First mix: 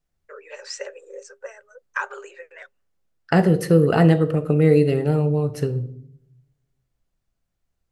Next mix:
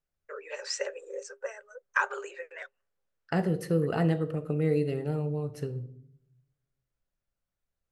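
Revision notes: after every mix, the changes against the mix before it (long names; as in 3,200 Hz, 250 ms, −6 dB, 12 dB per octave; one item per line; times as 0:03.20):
second voice −11.0 dB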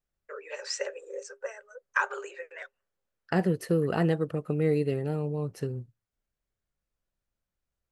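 second voice +4.0 dB
reverb: off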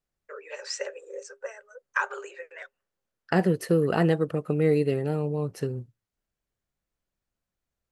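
second voice +4.0 dB
master: add low-shelf EQ 99 Hz −6.5 dB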